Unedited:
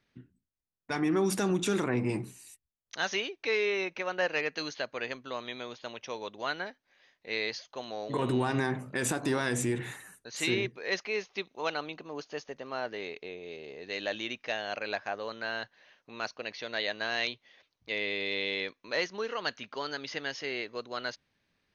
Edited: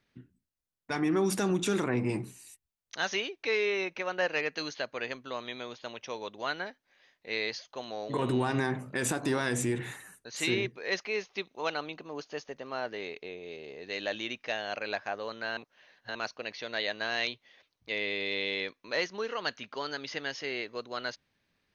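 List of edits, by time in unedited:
15.57–16.15 reverse

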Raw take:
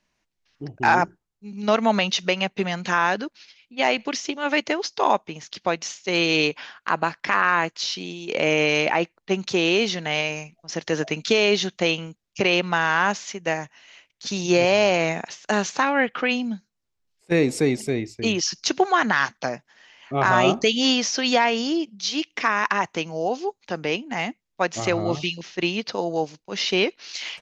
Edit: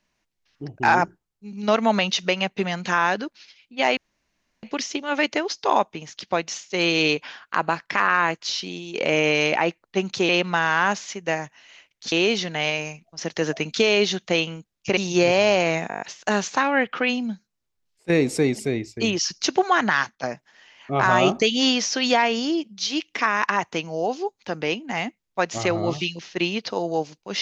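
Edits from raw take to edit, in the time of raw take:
3.97 insert room tone 0.66 s
12.48–14.31 move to 9.63
15.23 stutter 0.02 s, 7 plays
19.19–19.45 fade out, to -9.5 dB

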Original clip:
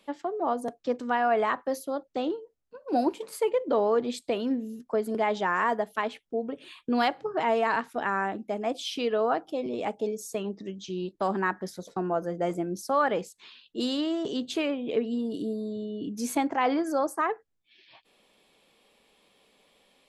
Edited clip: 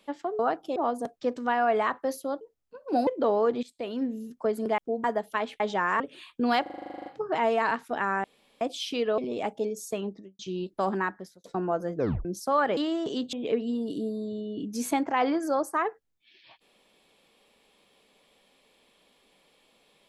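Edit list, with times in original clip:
2.04–2.41 cut
3.07–3.56 cut
4.12–4.61 fade in, from -17.5 dB
5.27–5.67 swap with 6.23–6.49
7.11 stutter 0.04 s, 12 plays
8.29–8.66 room tone
9.23–9.6 move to 0.39
10.46–10.81 studio fade out
11.38–11.86 fade out
12.37 tape stop 0.30 s
13.19–13.96 cut
14.52–14.77 cut

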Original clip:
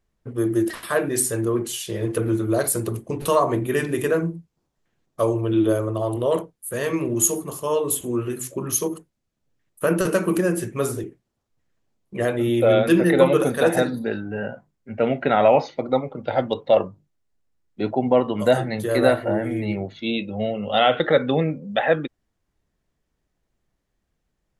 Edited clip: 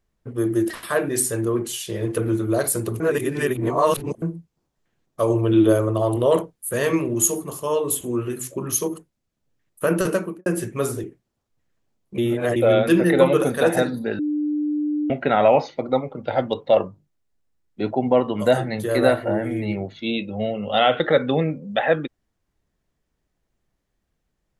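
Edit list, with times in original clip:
3–4.22 reverse
5.3–7.01 gain +3.5 dB
10.06–10.46 studio fade out
12.18–12.56 reverse
14.19–15.1 bleep 298 Hz -20 dBFS

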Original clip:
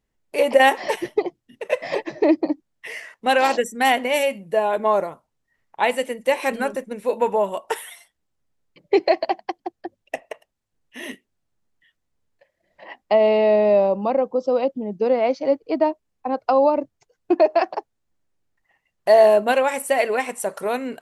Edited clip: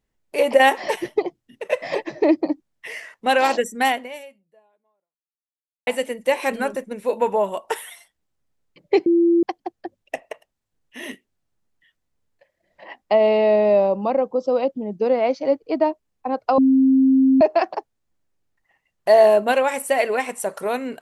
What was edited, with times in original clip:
3.84–5.87 fade out exponential
9.06–9.43 bleep 340 Hz -12.5 dBFS
16.58–17.41 bleep 265 Hz -11.5 dBFS

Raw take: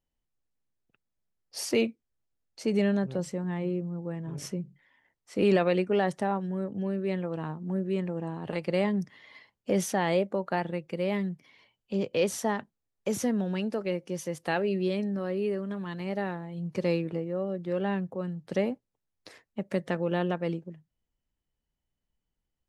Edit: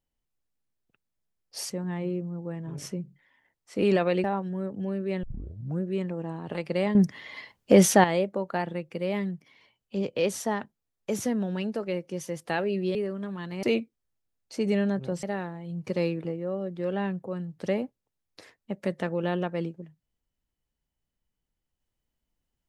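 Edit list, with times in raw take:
1.7–3.3 move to 16.11
5.84–6.22 cut
7.21 tape start 0.59 s
8.93–10.02 gain +10 dB
14.93–15.43 cut

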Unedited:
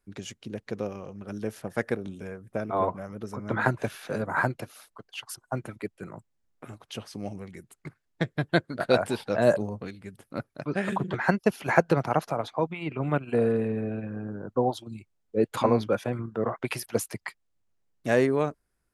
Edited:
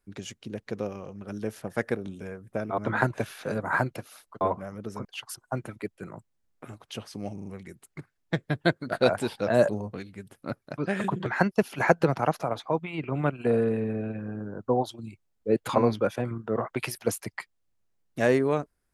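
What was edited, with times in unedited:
2.78–3.42 move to 5.05
7.34 stutter 0.04 s, 4 plays

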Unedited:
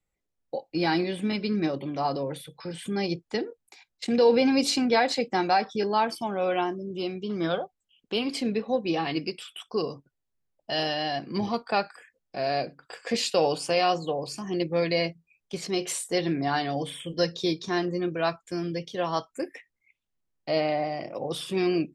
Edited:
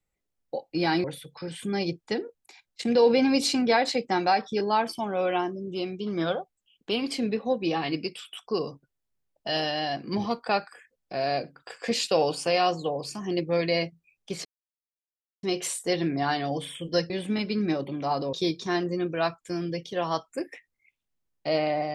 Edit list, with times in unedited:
1.04–2.27 move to 17.35
15.68 insert silence 0.98 s

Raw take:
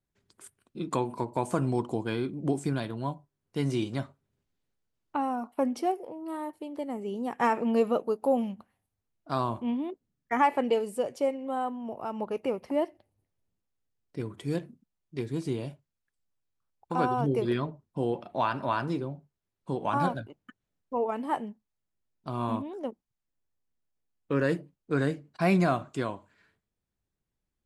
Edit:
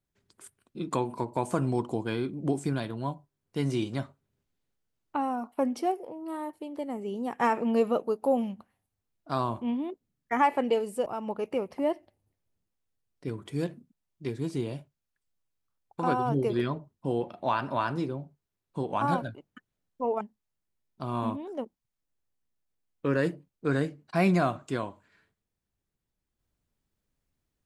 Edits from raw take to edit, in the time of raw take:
11.06–11.98 cut
21.13–21.47 cut

